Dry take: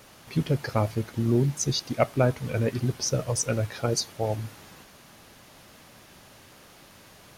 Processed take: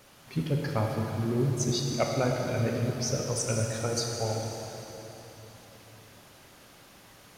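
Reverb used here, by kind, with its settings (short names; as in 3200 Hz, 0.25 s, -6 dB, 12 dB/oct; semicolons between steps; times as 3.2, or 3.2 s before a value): plate-style reverb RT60 3.7 s, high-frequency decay 0.95×, DRR 0 dB; gain -5 dB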